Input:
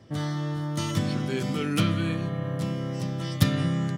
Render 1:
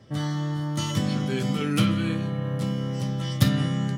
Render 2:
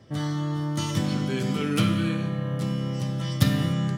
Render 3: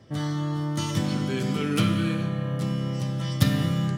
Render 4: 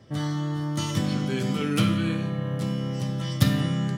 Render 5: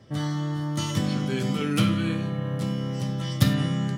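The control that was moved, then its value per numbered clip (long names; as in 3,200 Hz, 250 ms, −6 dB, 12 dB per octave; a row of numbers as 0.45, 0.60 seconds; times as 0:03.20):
reverb whose tail is shaped and stops, gate: 80, 320, 470, 200, 130 milliseconds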